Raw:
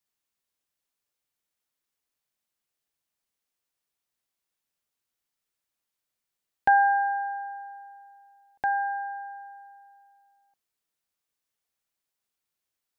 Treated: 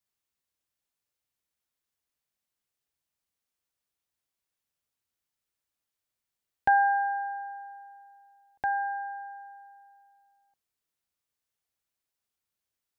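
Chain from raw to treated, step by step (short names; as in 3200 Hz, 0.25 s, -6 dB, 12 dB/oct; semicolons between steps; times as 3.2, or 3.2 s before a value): bell 76 Hz +6.5 dB 1.5 oct; gain -2.5 dB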